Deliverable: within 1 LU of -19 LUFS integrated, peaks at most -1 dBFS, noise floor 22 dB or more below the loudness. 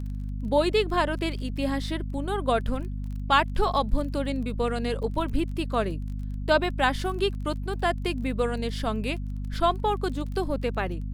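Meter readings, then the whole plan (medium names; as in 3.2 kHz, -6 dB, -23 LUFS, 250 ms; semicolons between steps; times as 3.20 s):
tick rate 23 per s; hum 50 Hz; highest harmonic 250 Hz; hum level -29 dBFS; loudness -27.5 LUFS; peak level -7.5 dBFS; loudness target -19.0 LUFS
-> de-click; hum notches 50/100/150/200/250 Hz; trim +8.5 dB; peak limiter -1 dBFS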